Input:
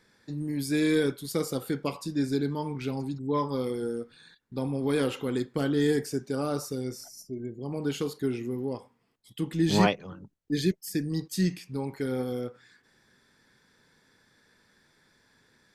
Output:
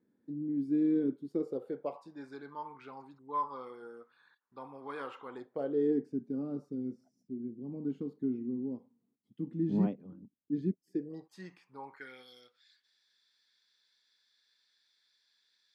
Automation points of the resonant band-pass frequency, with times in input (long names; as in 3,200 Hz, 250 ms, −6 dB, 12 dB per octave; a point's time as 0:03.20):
resonant band-pass, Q 3
0:01.20 270 Hz
0:02.33 1,100 Hz
0:05.24 1,100 Hz
0:06.12 240 Hz
0:10.77 240 Hz
0:11.36 1,000 Hz
0:11.88 1,000 Hz
0:12.29 4,000 Hz